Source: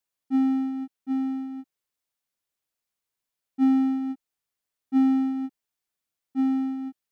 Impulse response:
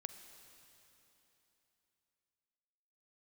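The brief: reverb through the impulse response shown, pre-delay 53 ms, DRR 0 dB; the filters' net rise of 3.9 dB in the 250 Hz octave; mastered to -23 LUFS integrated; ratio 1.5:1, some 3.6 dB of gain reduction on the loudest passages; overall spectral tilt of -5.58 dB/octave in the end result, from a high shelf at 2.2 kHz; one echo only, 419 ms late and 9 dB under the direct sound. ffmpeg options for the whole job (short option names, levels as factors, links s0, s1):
-filter_complex "[0:a]equalizer=f=250:t=o:g=4,highshelf=f=2200:g=3,acompressor=threshold=0.0708:ratio=1.5,aecho=1:1:419:0.355,asplit=2[s0][s1];[1:a]atrim=start_sample=2205,adelay=53[s2];[s1][s2]afir=irnorm=-1:irlink=0,volume=1.5[s3];[s0][s3]amix=inputs=2:normalize=0,volume=0.668"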